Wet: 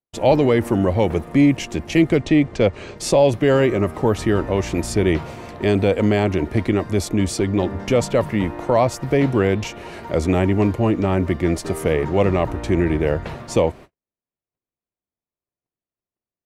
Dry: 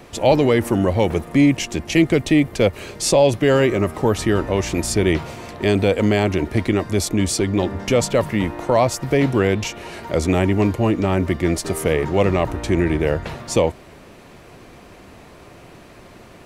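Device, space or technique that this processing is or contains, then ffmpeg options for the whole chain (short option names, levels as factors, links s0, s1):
behind a face mask: -filter_complex "[0:a]highshelf=f=2800:g=-6.5,asettb=1/sr,asplit=3[s0][s1][s2];[s0]atrim=end=2.174[s3];[s1]atrim=start=2.17:end=2.98,asetpts=PTS-STARTPTS,afade=t=in:d=0.004:c=qsin,afade=t=out:st=0.806:d=0.004:c=qsin,lowpass=f=7500:w=0.5412,lowpass=f=7500:w=1.3066[s4];[s2]atrim=start=2.976[s5];[s3][s4]acrossfade=d=0.004:c1=hsin:c2=qsin[s6];[s6][s5]acrossfade=d=0.004:c1=qsin:c2=hsin,agate=range=0.00224:threshold=0.0158:ratio=16:detection=peak"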